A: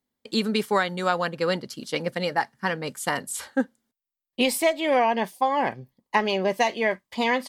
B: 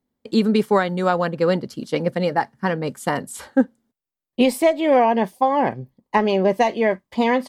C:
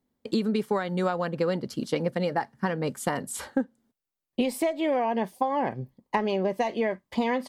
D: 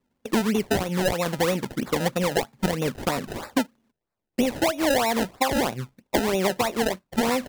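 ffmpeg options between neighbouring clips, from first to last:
-af "tiltshelf=f=1.1k:g=6,volume=2.5dB"
-af "acompressor=threshold=-23dB:ratio=6"
-af "acrusher=samples=27:mix=1:aa=0.000001:lfo=1:lforange=27:lforate=3.1,volume=3dB"

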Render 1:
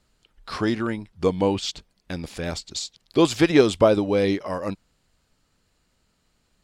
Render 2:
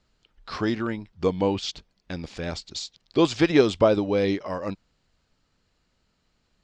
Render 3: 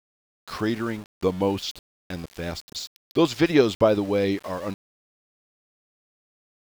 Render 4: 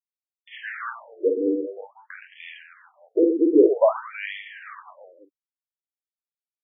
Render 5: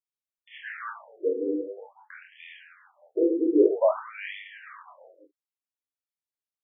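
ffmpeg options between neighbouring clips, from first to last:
-af "lowpass=f=6.6k:w=0.5412,lowpass=f=6.6k:w=1.3066,volume=-2dB"
-af "aeval=exprs='val(0)*gte(abs(val(0)),0.0119)':c=same"
-af "aecho=1:1:50|120|218|355.2|547.3:0.631|0.398|0.251|0.158|0.1,afftfilt=real='re*between(b*sr/1024,350*pow(2500/350,0.5+0.5*sin(2*PI*0.51*pts/sr))/1.41,350*pow(2500/350,0.5+0.5*sin(2*PI*0.51*pts/sr))*1.41)':imag='im*between(b*sr/1024,350*pow(2500/350,0.5+0.5*sin(2*PI*0.51*pts/sr))/1.41,350*pow(2500/350,0.5+0.5*sin(2*PI*0.51*pts/sr))*1.41)':win_size=1024:overlap=0.75,volume=2.5dB"
-af "flanger=delay=19.5:depth=6.9:speed=1.1,volume=-1.5dB"

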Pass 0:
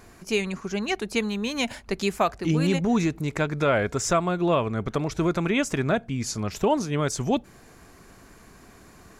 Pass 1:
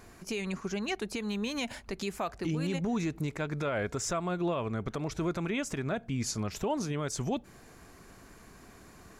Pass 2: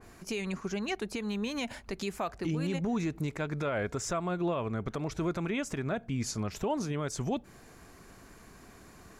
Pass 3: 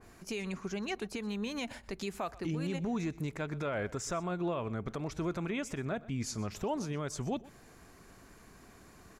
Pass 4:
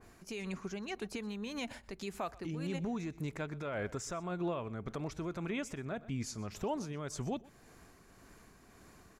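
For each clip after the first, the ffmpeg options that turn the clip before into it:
-af "alimiter=limit=-20dB:level=0:latency=1:release=137,volume=-3dB"
-af "adynamicequalizer=threshold=0.00501:dfrequency=2500:dqfactor=0.7:tfrequency=2500:tqfactor=0.7:attack=5:release=100:ratio=0.375:range=1.5:mode=cutabove:tftype=highshelf"
-af "aecho=1:1:124:0.1,volume=-3dB"
-af "tremolo=f=1.8:d=0.34,volume=-1.5dB"

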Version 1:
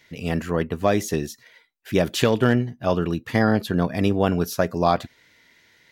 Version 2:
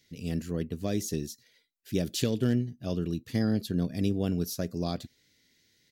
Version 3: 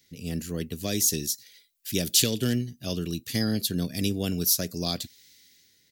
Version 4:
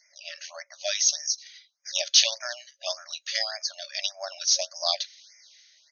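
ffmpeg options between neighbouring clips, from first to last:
-af "firequalizer=gain_entry='entry(260,0);entry(910,-18);entry(1600,-12);entry(4400,2)':delay=0.05:min_phase=1,volume=-6dB"
-filter_complex "[0:a]acrossover=split=350|2100[a][b][c];[c]dynaudnorm=f=110:g=9:m=10dB[d];[a][b][d]amix=inputs=3:normalize=0,crystalizer=i=1:c=0"
-af "acontrast=51,afftfilt=real='re*between(b*sr/4096,550,6600)':imag='im*between(b*sr/4096,550,6600)':win_size=4096:overlap=0.75,afftfilt=real='re*(1-between(b*sr/1024,780*pow(3500/780,0.5+0.5*sin(2*PI*1.7*pts/sr))/1.41,780*pow(3500/780,0.5+0.5*sin(2*PI*1.7*pts/sr))*1.41))':imag='im*(1-between(b*sr/1024,780*pow(3500/780,0.5+0.5*sin(2*PI*1.7*pts/sr))/1.41,780*pow(3500/780,0.5+0.5*sin(2*PI*1.7*pts/sr))*1.41))':win_size=1024:overlap=0.75"

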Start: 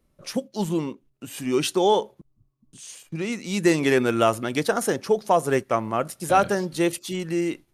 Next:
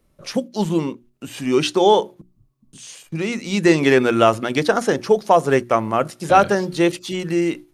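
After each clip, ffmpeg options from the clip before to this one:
-filter_complex "[0:a]bandreject=f=60:t=h:w=6,bandreject=f=120:t=h:w=6,bandreject=f=180:t=h:w=6,bandreject=f=240:t=h:w=6,bandreject=f=300:t=h:w=6,bandreject=f=360:t=h:w=6,acrossover=split=6600[a][b];[b]acompressor=threshold=-51dB:ratio=4:attack=1:release=60[c];[a][c]amix=inputs=2:normalize=0,volume=5.5dB"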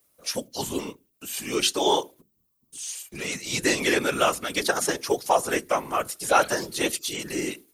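-af "aemphasis=mode=production:type=riaa,afftfilt=real='hypot(re,im)*cos(2*PI*random(0))':imag='hypot(re,im)*sin(2*PI*random(1))':win_size=512:overlap=0.75"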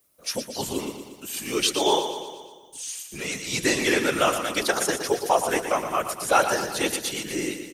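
-af "aecho=1:1:118|236|354|472|590|708|826:0.355|0.209|0.124|0.0729|0.043|0.0254|0.015"

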